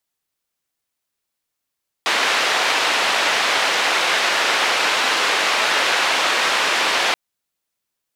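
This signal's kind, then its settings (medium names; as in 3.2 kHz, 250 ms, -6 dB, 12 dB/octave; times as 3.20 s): noise band 500–3000 Hz, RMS -18.5 dBFS 5.08 s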